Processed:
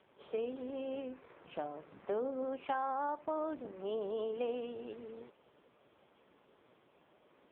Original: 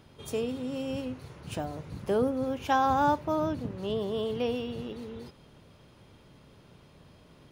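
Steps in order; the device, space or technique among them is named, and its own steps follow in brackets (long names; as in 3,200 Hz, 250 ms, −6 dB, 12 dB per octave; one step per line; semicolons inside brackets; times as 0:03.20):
0:02.74–0:03.53: downward expander −33 dBFS
dynamic equaliser 130 Hz, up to −3 dB, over −51 dBFS, Q 3.9
voicemail (band-pass filter 360–2,800 Hz; downward compressor 8 to 1, threshold −29 dBFS, peak gain reduction 9 dB; level −2 dB; AMR narrowband 5.15 kbit/s 8,000 Hz)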